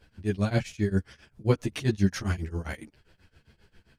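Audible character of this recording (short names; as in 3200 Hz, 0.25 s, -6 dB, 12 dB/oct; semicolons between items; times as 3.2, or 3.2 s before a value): tremolo triangle 7.5 Hz, depth 100%; a shimmering, thickened sound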